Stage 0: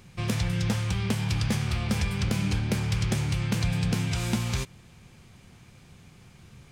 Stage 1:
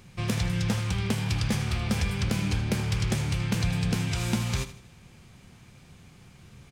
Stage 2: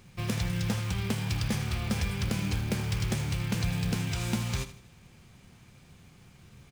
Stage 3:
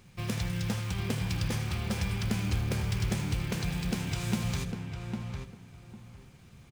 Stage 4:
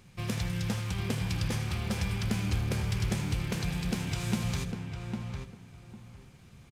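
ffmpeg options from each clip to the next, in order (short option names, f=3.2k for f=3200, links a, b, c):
-af "aecho=1:1:79|158|237|316:0.211|0.0782|0.0289|0.0107"
-af "acrusher=bits=5:mode=log:mix=0:aa=0.000001,volume=-3dB"
-filter_complex "[0:a]asplit=2[a][b];[b]adelay=802,lowpass=f=1.6k:p=1,volume=-4dB,asplit=2[c][d];[d]adelay=802,lowpass=f=1.6k:p=1,volume=0.23,asplit=2[e][f];[f]adelay=802,lowpass=f=1.6k:p=1,volume=0.23[g];[a][c][e][g]amix=inputs=4:normalize=0,volume=-2dB"
-af "aresample=32000,aresample=44100"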